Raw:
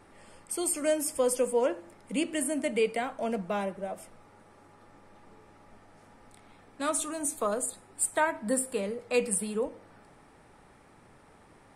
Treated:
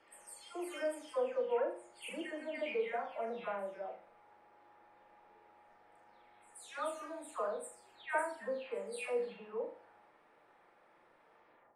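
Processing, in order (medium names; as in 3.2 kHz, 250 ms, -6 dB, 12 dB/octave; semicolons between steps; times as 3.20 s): delay that grows with frequency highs early, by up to 388 ms; three-band isolator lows -20 dB, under 340 Hz, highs -18 dB, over 3.7 kHz; flutter echo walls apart 6.8 m, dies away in 0.39 s; trim -6.5 dB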